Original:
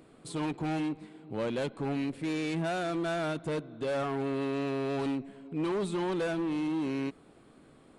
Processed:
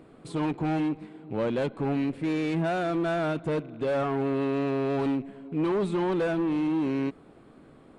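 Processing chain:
loose part that buzzes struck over −47 dBFS, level −49 dBFS
high-shelf EQ 3,500 Hz −11.5 dB
level +5 dB

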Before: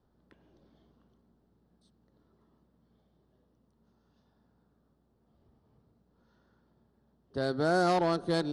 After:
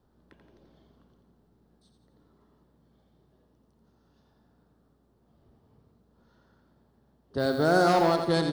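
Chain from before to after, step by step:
0:07.38–0:08.14: background noise violet −60 dBFS
repeating echo 86 ms, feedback 52%, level −7 dB
level +4 dB

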